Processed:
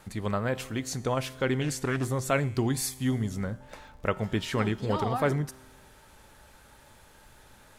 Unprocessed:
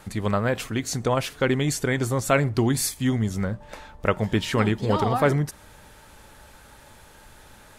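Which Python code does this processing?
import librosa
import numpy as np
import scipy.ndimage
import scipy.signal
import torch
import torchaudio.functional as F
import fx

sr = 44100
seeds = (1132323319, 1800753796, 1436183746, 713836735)

y = fx.comb_fb(x, sr, f0_hz=130.0, decay_s=1.4, harmonics='all', damping=0.0, mix_pct=50)
y = fx.dmg_crackle(y, sr, seeds[0], per_s=100.0, level_db=-53.0)
y = fx.doppler_dist(y, sr, depth_ms=0.35, at=(1.61, 2.08))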